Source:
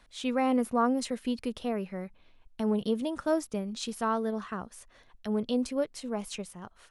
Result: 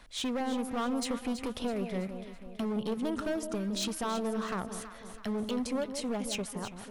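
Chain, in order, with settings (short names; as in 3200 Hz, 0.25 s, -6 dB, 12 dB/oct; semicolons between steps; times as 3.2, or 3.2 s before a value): compressor 4:1, threshold -33 dBFS, peak gain reduction 10 dB; hard clip -34.5 dBFS, distortion -10 dB; echo with dull and thin repeats by turns 0.164 s, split 900 Hz, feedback 69%, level -7.5 dB; gain +5.5 dB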